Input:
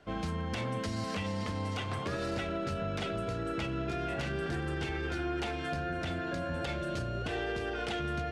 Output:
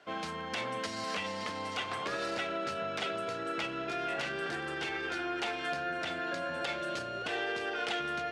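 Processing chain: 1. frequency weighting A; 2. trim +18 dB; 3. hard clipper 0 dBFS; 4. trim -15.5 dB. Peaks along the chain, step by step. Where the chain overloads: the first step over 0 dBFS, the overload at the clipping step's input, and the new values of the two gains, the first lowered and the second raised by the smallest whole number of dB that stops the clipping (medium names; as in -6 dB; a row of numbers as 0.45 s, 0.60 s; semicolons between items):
-23.5 dBFS, -5.5 dBFS, -5.5 dBFS, -21.0 dBFS; nothing clips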